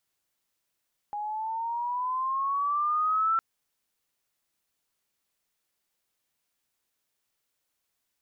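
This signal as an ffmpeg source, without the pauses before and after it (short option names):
-f lavfi -i "aevalsrc='pow(10,(-21.5+9*(t/2.26-1))/20)*sin(2*PI*823*2.26/(8.5*log(2)/12)*(exp(8.5*log(2)/12*t/2.26)-1))':d=2.26:s=44100"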